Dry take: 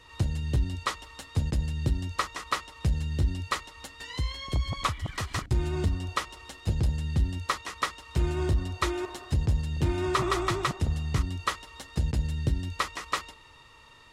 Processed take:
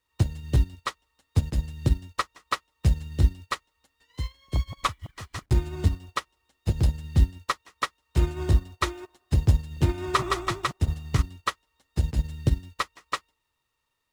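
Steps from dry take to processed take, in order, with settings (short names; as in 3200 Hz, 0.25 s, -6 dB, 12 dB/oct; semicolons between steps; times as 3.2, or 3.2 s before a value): bit-crush 9-bit; upward expander 2.5:1, over -43 dBFS; gain +8 dB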